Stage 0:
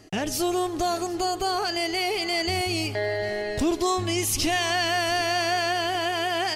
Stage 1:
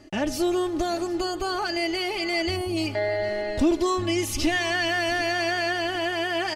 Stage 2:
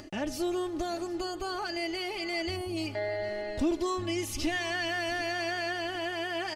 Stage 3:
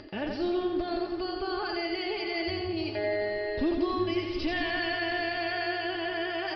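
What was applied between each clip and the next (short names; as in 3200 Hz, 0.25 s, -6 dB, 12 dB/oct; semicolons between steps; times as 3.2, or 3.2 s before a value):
high shelf 5100 Hz -10 dB; comb 3.4 ms, depth 59%; spectral gain 2.56–2.77, 1200–8200 Hz -9 dB
upward compressor, threshold -32 dBFS; gain -7 dB
small resonant body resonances 430/1600 Hz, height 8 dB; on a send: split-band echo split 400 Hz, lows 0.16 s, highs 87 ms, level -4 dB; on the sum: downsampling 11025 Hz; gain -1 dB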